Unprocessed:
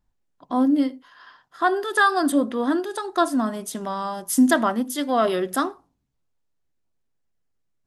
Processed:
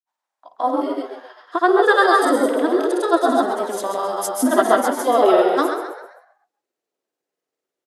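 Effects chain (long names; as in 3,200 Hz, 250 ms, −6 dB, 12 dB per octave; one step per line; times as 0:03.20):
convolution reverb RT60 0.40 s, pre-delay 75 ms, DRR 4.5 dB
high-pass filter sweep 850 Hz → 390 Hz, 0:00.26–0:01.03
granular cloud, pitch spread up and down by 0 semitones
echo with shifted repeats 131 ms, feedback 39%, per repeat +110 Hz, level −8.5 dB
level +2.5 dB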